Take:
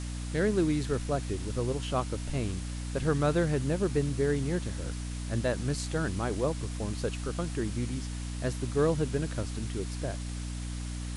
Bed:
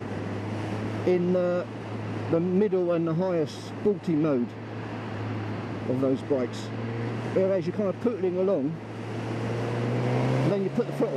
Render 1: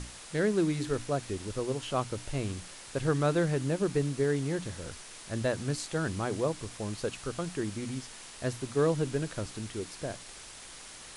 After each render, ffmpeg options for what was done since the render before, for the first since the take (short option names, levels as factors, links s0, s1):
-af "bandreject=f=60:t=h:w=6,bandreject=f=120:t=h:w=6,bandreject=f=180:t=h:w=6,bandreject=f=240:t=h:w=6,bandreject=f=300:t=h:w=6"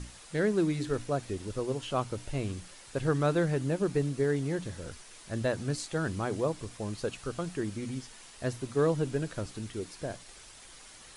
-af "afftdn=nr=6:nf=-48"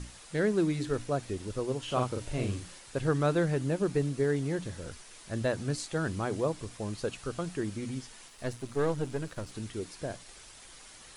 -filter_complex "[0:a]asettb=1/sr,asplit=3[s0][s1][s2];[s0]atrim=end=1.844[s3];[s1]atrim=start=1.84:end=2.79,asetpts=PTS-STARTPTS,afade=t=in:d=0.004:c=qsin,afade=t=out:st=0.946:d=0.004:c=qsin,asplit=2[s4][s5];[s5]adelay=40,volume=0.708[s6];[s4][s6]amix=inputs=2:normalize=0,atrim=end_sample=41895[s7];[s2]atrim=start=2.786[s8];[s3][s7]acrossfade=d=0.004:c1=hsin:c2=qsin[s9];[s9][s8]acrossfade=d=0.004:c1=qsin:c2=hsin,asettb=1/sr,asplit=3[s10][s11][s12];[s10]atrim=end=8.284[s13];[s11]atrim=start=8.28:end=9.52,asetpts=PTS-STARTPTS,afade=t=in:d=0.004:c=qsin,afade=t=out:st=1.236:d=0.004:c=qsin,aeval=exprs='if(lt(val(0),0),0.447*val(0),val(0))':c=same[s14];[s12]atrim=start=9.516[s15];[s13][s14]acrossfade=d=0.004:c1=hsin:c2=qsin[s16];[s16][s15]acrossfade=d=0.004:c1=qsin:c2=hsin"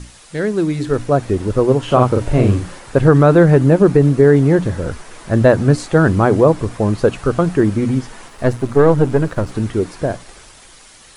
-filter_complex "[0:a]acrossover=split=1800[s0][s1];[s0]dynaudnorm=f=100:g=21:m=4.22[s2];[s2][s1]amix=inputs=2:normalize=0,alimiter=level_in=2.37:limit=0.891:release=50:level=0:latency=1"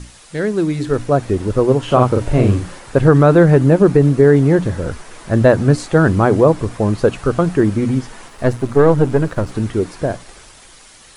-af anull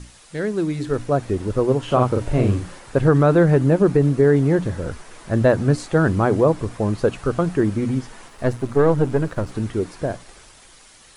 -af "volume=0.562"